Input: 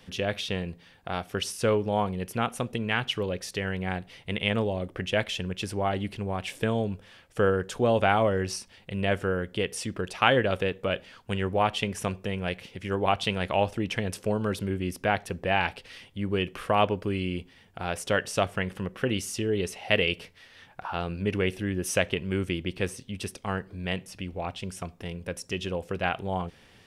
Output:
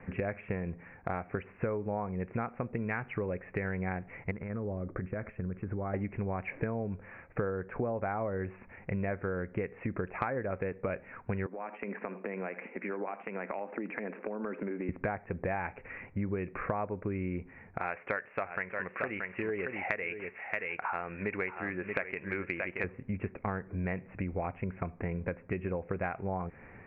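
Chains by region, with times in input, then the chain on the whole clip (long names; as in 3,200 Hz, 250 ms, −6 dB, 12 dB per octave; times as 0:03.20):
0:04.31–0:05.94: parametric band 940 Hz −13 dB 1.4 octaves + downward compressor 12 to 1, threshold −35 dBFS + low-pass with resonance 1,200 Hz, resonance Q 2.3
0:11.46–0:14.89: Butterworth high-pass 210 Hz + downward compressor 16 to 1, threshold −36 dBFS + single-tap delay 80 ms −17 dB
0:17.78–0:22.84: spectral tilt +4.5 dB per octave + single-tap delay 628 ms −8.5 dB
whole clip: Butterworth low-pass 2,400 Hz 96 dB per octave; treble cut that deepens with the level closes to 1,800 Hz, closed at −20 dBFS; downward compressor 10 to 1, threshold −36 dBFS; level +5.5 dB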